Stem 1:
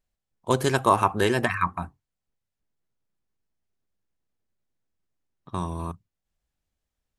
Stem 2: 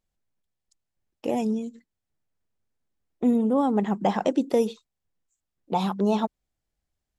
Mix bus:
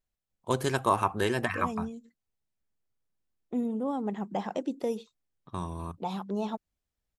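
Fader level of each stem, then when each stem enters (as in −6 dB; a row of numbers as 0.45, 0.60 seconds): −5.5, −9.0 decibels; 0.00, 0.30 seconds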